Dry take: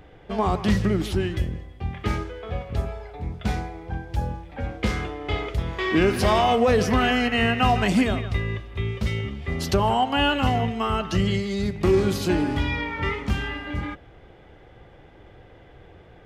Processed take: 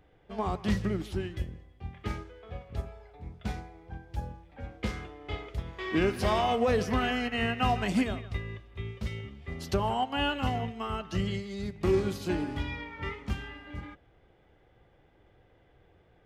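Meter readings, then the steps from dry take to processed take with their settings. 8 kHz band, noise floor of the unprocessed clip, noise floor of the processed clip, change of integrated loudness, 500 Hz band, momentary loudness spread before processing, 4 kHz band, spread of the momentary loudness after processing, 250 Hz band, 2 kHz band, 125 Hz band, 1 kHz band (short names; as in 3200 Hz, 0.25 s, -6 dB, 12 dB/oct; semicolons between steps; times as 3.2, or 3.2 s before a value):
-9.5 dB, -49 dBFS, -63 dBFS, -8.0 dB, -7.5 dB, 12 LU, -8.5 dB, 16 LU, -8.0 dB, -8.5 dB, -9.0 dB, -8.0 dB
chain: upward expander 1.5:1, over -31 dBFS; gain -6 dB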